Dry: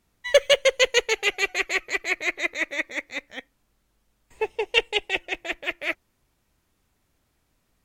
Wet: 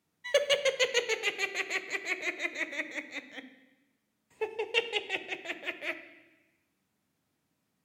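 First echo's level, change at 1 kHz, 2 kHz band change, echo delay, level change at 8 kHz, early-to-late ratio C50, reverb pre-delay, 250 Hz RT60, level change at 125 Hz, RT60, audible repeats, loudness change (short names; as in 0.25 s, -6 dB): none, -7.5 dB, -7.5 dB, none, -7.5 dB, 12.0 dB, 6 ms, 1.3 s, n/a, 1.1 s, none, -8.0 dB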